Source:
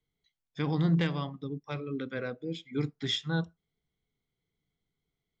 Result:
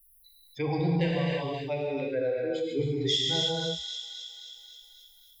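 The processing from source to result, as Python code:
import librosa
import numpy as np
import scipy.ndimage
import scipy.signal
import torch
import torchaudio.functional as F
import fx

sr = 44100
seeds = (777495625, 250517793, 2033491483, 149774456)

p1 = fx.bin_expand(x, sr, power=2.0)
p2 = fx.fixed_phaser(p1, sr, hz=530.0, stages=4)
p3 = p2 + fx.echo_wet_highpass(p2, sr, ms=266, feedback_pct=38, hz=3000.0, wet_db=-9, dry=0)
p4 = fx.rev_gated(p3, sr, seeds[0], gate_ms=360, shape='flat', drr_db=-2.0)
p5 = fx.env_flatten(p4, sr, amount_pct=50)
y = p5 * 10.0 ** (5.0 / 20.0)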